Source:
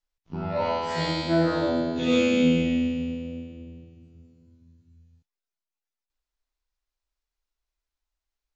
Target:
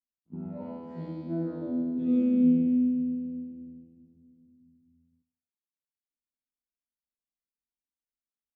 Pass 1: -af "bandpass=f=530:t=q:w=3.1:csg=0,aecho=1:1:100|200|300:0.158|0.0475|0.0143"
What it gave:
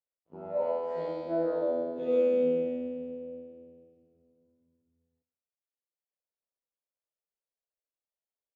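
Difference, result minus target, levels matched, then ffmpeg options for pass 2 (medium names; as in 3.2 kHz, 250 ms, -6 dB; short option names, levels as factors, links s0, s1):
500 Hz band +15.0 dB
-af "bandpass=f=230:t=q:w=3.1:csg=0,aecho=1:1:100|200|300:0.158|0.0475|0.0143"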